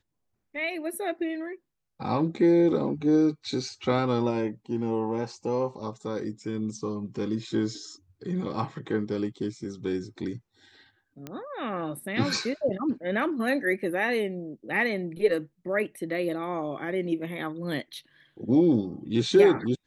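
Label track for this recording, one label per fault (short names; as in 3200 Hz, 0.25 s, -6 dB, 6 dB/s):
11.270000	11.270000	pop -22 dBFS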